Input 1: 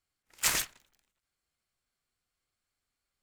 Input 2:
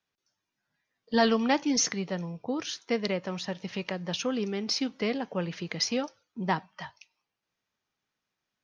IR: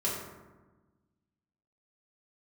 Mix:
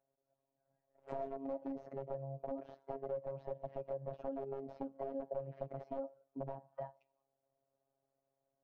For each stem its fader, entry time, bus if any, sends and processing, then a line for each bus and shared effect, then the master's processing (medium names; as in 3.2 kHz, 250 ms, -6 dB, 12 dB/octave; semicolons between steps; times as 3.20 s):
-7.0 dB, 0.65 s, no send, none
+0.5 dB, 0.00 s, no send, compression 6:1, threshold -35 dBFS, peak gain reduction 15.5 dB; integer overflow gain 31 dB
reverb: none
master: resonant low-pass 620 Hz, resonance Q 7.3; robot voice 136 Hz; compression 2:1, threshold -42 dBFS, peak gain reduction 8 dB